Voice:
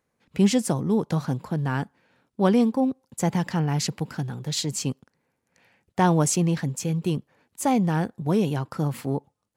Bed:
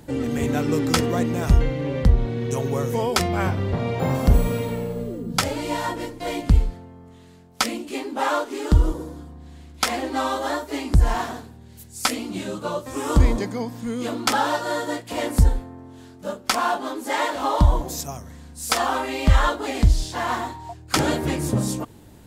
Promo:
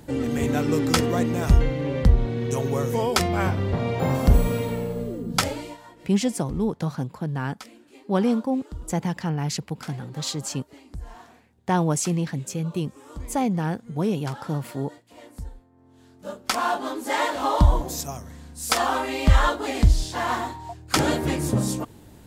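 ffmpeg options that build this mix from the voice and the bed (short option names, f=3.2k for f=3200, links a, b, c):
-filter_complex "[0:a]adelay=5700,volume=-2dB[a];[1:a]volume=19.5dB,afade=t=out:st=5.42:d=0.35:silence=0.1,afade=t=in:st=15.71:d=1.12:silence=0.1[b];[a][b]amix=inputs=2:normalize=0"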